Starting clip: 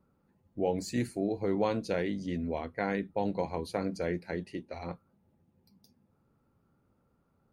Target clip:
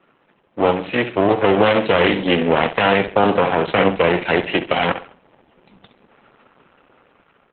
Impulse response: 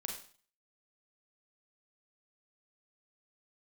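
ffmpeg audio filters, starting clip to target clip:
-filter_complex "[0:a]acrossover=split=380 4900:gain=0.178 1 0.1[a][b][c];[a][b][c]amix=inputs=3:normalize=0,aeval=exprs='max(val(0),0)':c=same,asplit=2[d][e];[e]acompressor=threshold=-45dB:ratio=16,volume=1dB[f];[d][f]amix=inputs=2:normalize=0,highpass=f=120:w=0.5412,highpass=f=120:w=1.3066,highshelf=f=4k:t=q:w=3:g=-9,dynaudnorm=f=530:g=5:m=7.5dB,aecho=1:1:67|134|201|268:0.266|0.0905|0.0308|0.0105,alimiter=level_in=20.5dB:limit=-1dB:release=50:level=0:latency=1,volume=-1.5dB" -ar 48000 -c:a libopus -b:a 8k

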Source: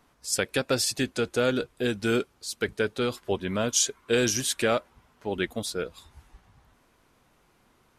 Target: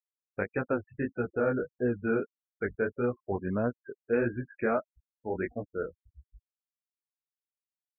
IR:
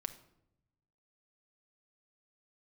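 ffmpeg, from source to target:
-af "lowpass=f=1.9k:w=0.5412,lowpass=f=1.9k:w=1.3066,afftfilt=real='re*gte(hypot(re,im),0.0224)':imag='im*gte(hypot(re,im),0.0224)':win_size=1024:overlap=0.75,flanger=delay=16:depth=6.5:speed=1.6"

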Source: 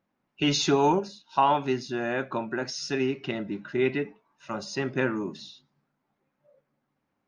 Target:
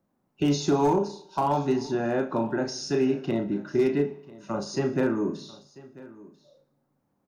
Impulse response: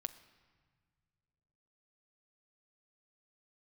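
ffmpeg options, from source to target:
-filter_complex "[0:a]acrossover=split=300|990[a][b][c];[a]acompressor=threshold=-32dB:ratio=4[d];[b]acompressor=threshold=-26dB:ratio=4[e];[c]acompressor=threshold=-31dB:ratio=4[f];[d][e][f]amix=inputs=3:normalize=0,asplit=2[g][h];[h]adelay=35,volume=-6.5dB[i];[g][i]amix=inputs=2:normalize=0,asplit=2[j][k];[k]aecho=0:1:61|122|183|244|305|366:0.133|0.08|0.048|0.0288|0.0173|0.0104[l];[j][l]amix=inputs=2:normalize=0,asoftclip=type=hard:threshold=-19dB,equalizer=f=2.5k:t=o:w=2.1:g=-12.5,asplit=2[m][n];[n]aecho=0:1:992:0.0944[o];[m][o]amix=inputs=2:normalize=0,volume=5dB"

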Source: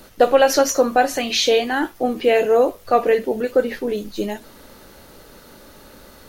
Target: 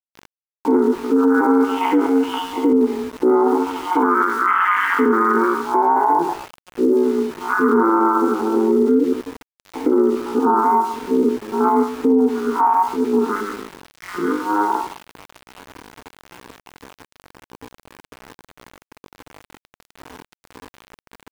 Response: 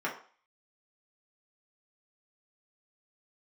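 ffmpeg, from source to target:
-filter_complex "[0:a]acompressor=threshold=-18dB:ratio=16,asplit=3[a][b][c];[a]bandpass=f=530:t=q:w=8,volume=0dB[d];[b]bandpass=f=1.84k:t=q:w=8,volume=-6dB[e];[c]bandpass=f=2.48k:t=q:w=8,volume=-9dB[f];[d][e][f]amix=inputs=3:normalize=0,adynamicequalizer=threshold=0.00224:dfrequency=2900:dqfactor=0.82:tfrequency=2900:tqfactor=0.82:attack=5:release=100:ratio=0.375:range=3:mode=boostabove:tftype=bell,asetrate=22050,aresample=44100,asplit=2[g][h];[1:a]atrim=start_sample=2205,afade=t=out:st=0.23:d=0.01,atrim=end_sample=10584[i];[h][i]afir=irnorm=-1:irlink=0,volume=-7.5dB[j];[g][j]amix=inputs=2:normalize=0,tremolo=f=190:d=0.788,atempo=0.59,highpass=f=300:w=0.5412,highpass=f=300:w=1.3066,equalizer=f=370:t=q:w=4:g=8,equalizer=f=610:t=q:w=4:g=-7,equalizer=f=950:t=q:w=4:g=5,equalizer=f=1.7k:t=q:w=4:g=-6,equalizer=f=2.4k:t=q:w=4:g=-4,equalizer=f=3.8k:t=q:w=4:g=-3,lowpass=f=4k:w=0.5412,lowpass=f=4k:w=1.3066,aeval=exprs='val(0)*gte(abs(val(0)),0.00237)':c=same,alimiter=level_in=27.5dB:limit=-1dB:release=50:level=0:latency=1,volume=-6.5dB"

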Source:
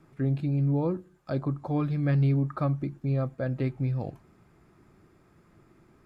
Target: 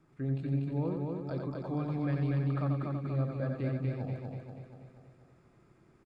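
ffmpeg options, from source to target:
-filter_complex "[0:a]asplit=2[a][b];[b]aecho=0:1:241|482|723|964|1205|1446|1687|1928:0.708|0.389|0.214|0.118|0.0648|0.0356|0.0196|0.0108[c];[a][c]amix=inputs=2:normalize=0,aresample=22050,aresample=44100,asplit=2[d][e];[e]aecho=0:1:89:0.562[f];[d][f]amix=inputs=2:normalize=0,volume=-8dB"

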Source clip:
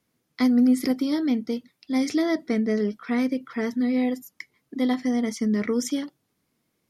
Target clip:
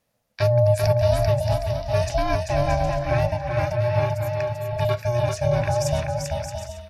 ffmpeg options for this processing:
-af "aeval=exprs='val(0)*sin(2*PI*360*n/s)':c=same,aecho=1:1:390|624|764.4|848.6|899.2:0.631|0.398|0.251|0.158|0.1,volume=3.5dB"

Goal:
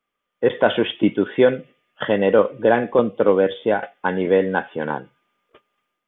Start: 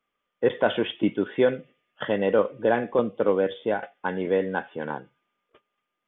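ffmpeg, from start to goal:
-af "dynaudnorm=f=280:g=3:m=7dB"

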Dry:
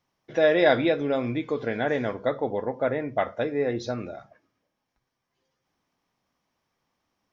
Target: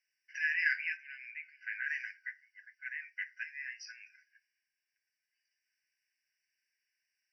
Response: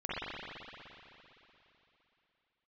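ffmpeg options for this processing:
-filter_complex "[0:a]asettb=1/sr,asplit=3[a][b][c];[a]atrim=end=0.974[d];[b]atrim=start=0.97:end=1.84,asetpts=PTS-STARTPTS,afade=t=in:d=0.004:c=qsin,afade=t=out:st=0.866:d=0.004:c=qsin,lowpass=2.9k[e];[c]atrim=start=1.836[f];[d][e]acrossfade=d=0.004:c1=hsin:c2=qsin[g];[g][f]acrossfade=d=0.004:c1=qsin:c2=hsin,afftfilt=real='re*eq(mod(floor(b*sr/1024/1500),2),1)':imag='im*eq(mod(floor(b*sr/1024/1500),2),1)':win_size=1024:overlap=0.75,volume=-1.5dB"

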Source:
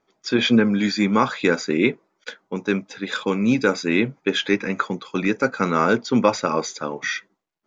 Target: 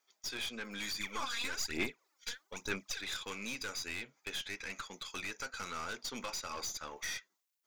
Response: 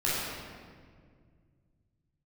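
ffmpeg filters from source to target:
-filter_complex "[0:a]aderivative,acompressor=threshold=-40dB:ratio=4,aeval=exprs='(tanh(126*val(0)+0.45)-tanh(0.45))/126':c=same,asplit=3[a][b][c];[a]afade=t=out:st=0.99:d=0.02[d];[b]aphaser=in_gain=1:out_gain=1:delay=4.3:decay=0.69:speed=1.1:type=sinusoidal,afade=t=in:st=0.99:d=0.02,afade=t=out:st=3:d=0.02[e];[c]afade=t=in:st=3:d=0.02[f];[d][e][f]amix=inputs=3:normalize=0,volume=7dB"

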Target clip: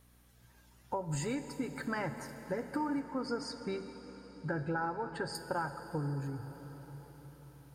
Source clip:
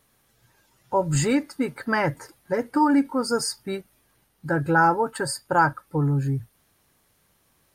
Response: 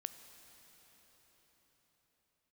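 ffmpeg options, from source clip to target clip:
-filter_complex "[0:a]asettb=1/sr,asplit=3[a][b][c];[a]atrim=end=3.004[d];[b]atrim=start=3:end=5.35,asetpts=PTS-STARTPTS,afade=t=in:d=0.004:c=qsin,afade=t=out:st=2.346:d=0.004:c=qsin,lowpass=4.1k[e];[c]atrim=start=5.346[f];[d][e]acrossfade=d=0.004:c1=hsin:c2=qsin[g];[g][f]acrossfade=d=0.004:c1=qsin:c2=hsin,acompressor=threshold=-30dB:ratio=6,aeval=exprs='val(0)+0.001*(sin(2*PI*60*n/s)+sin(2*PI*2*60*n/s)/2+sin(2*PI*3*60*n/s)/3+sin(2*PI*4*60*n/s)/4+sin(2*PI*5*60*n/s)/5)':c=same[h];[1:a]atrim=start_sample=2205[i];[h][i]afir=irnorm=-1:irlink=0"

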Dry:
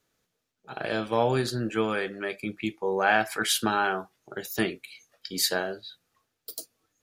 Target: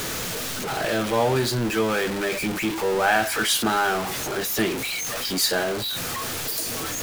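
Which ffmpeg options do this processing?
-af "aeval=exprs='val(0)+0.5*0.0708*sgn(val(0))':c=same"

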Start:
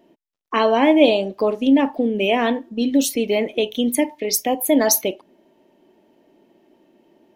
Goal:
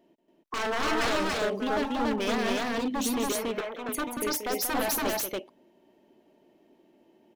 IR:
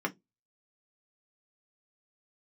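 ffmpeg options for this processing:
-filter_complex "[0:a]aeval=exprs='0.15*(abs(mod(val(0)/0.15+3,4)-2)-1)':c=same,asettb=1/sr,asplit=3[a][b][c];[a]atrim=end=3.324[d];[b]atrim=start=3.32:end=3.89,asetpts=PTS-STARTPTS,afade=t=in:d=0.004:c=qsin,afade=t=out:st=0.566:d=0.004:c=qsin,acrossover=split=510 2200:gain=0.178 1 0.126[e][f][g];[e][f][g]amix=inputs=3:normalize=0[h];[c]atrim=start=3.886[i];[d][h]acrossfade=d=0.004:c1=hsin:c2=qsin[j];[j][i]acrossfade=d=0.004:c1=qsin:c2=hsin,aecho=1:1:183.7|282.8:0.398|0.891,volume=-8dB"

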